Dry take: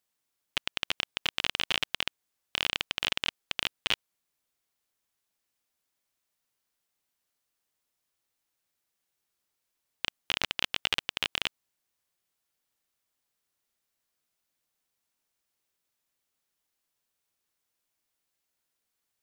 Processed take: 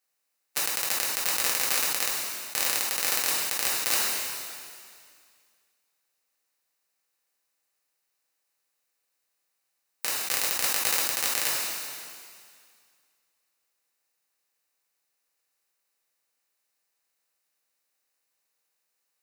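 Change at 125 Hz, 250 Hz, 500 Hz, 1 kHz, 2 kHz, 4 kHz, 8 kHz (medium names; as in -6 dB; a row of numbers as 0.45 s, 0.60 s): -3.0 dB, +1.5 dB, +5.5 dB, +6.0 dB, +2.0 dB, -0.5 dB, +19.0 dB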